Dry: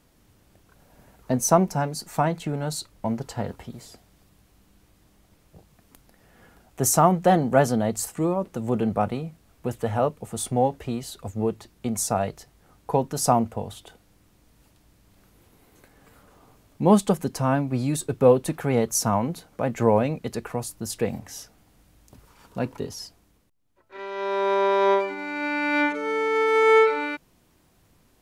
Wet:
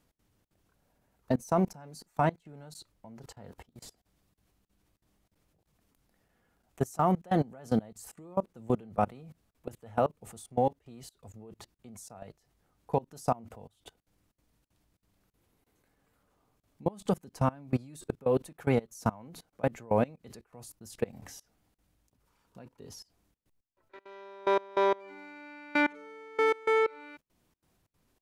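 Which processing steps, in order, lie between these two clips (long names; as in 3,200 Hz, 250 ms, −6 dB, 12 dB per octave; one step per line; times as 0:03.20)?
amplitude tremolo 3.1 Hz, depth 84%
output level in coarse steps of 24 dB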